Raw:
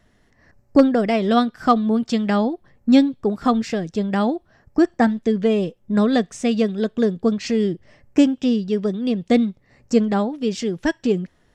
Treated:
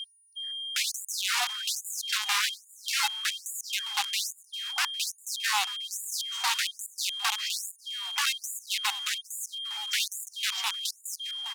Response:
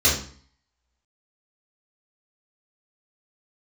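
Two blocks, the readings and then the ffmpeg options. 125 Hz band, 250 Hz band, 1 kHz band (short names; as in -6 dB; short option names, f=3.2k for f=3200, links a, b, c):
under -40 dB, under -40 dB, -10.0 dB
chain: -filter_complex "[0:a]adynamicequalizer=threshold=0.02:dfrequency=120:dqfactor=1.3:tfrequency=120:tqfactor=1.3:attack=5:release=100:ratio=0.375:range=2:mode=cutabove:tftype=bell,aeval=exprs='val(0)+0.0355*sin(2*PI*3200*n/s)':c=same,aeval=exprs='(mod(6.31*val(0)+1,2)-1)/6.31':c=same,adynamicsmooth=sensitivity=4:basefreq=4.3k,asplit=2[a][b];[b]asplit=3[c][d][e];[c]adelay=403,afreqshift=140,volume=-17dB[f];[d]adelay=806,afreqshift=280,volume=-24.7dB[g];[e]adelay=1209,afreqshift=420,volume=-32.5dB[h];[f][g][h]amix=inputs=3:normalize=0[i];[a][i]amix=inputs=2:normalize=0,afftfilt=real='re*gte(b*sr/1024,690*pow(6900/690,0.5+0.5*sin(2*PI*1.2*pts/sr)))':imag='im*gte(b*sr/1024,690*pow(6900/690,0.5+0.5*sin(2*PI*1.2*pts/sr)))':win_size=1024:overlap=0.75,volume=-3dB"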